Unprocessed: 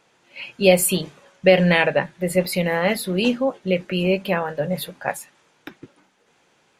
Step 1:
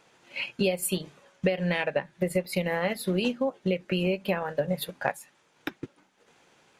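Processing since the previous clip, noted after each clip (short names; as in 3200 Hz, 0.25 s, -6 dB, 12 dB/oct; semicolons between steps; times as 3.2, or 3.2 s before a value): transient shaper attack +4 dB, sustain -6 dB; compressor 8:1, threshold -23 dBFS, peak gain reduction 17 dB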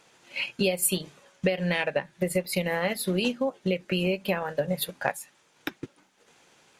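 bell 11000 Hz +6 dB 2.6 oct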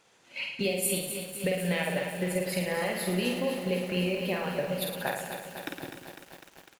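on a send: reverse bouncing-ball echo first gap 50 ms, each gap 1.2×, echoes 5; on the sum: lo-fi delay 0.251 s, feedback 80%, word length 7-bit, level -8.5 dB; gain -5.5 dB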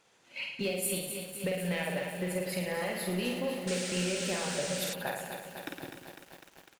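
in parallel at -4.5 dB: overloaded stage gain 27 dB; on the sum: painted sound noise, 3.67–4.94, 1300–9500 Hz -32 dBFS; gain -7 dB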